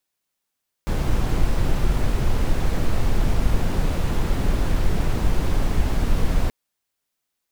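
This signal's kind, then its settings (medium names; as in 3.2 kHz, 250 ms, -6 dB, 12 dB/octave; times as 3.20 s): noise brown, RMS -18 dBFS 5.63 s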